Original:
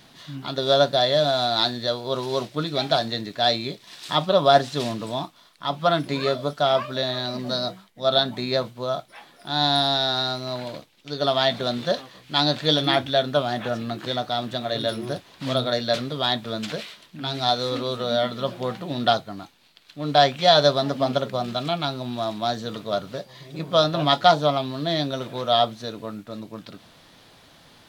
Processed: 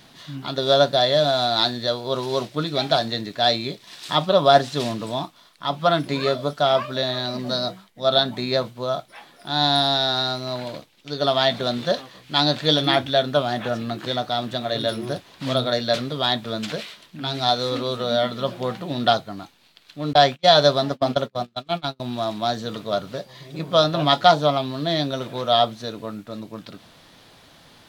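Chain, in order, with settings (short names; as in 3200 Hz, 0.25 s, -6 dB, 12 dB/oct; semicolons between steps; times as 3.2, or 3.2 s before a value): 20.13–22 gate -24 dBFS, range -36 dB; gain +1.5 dB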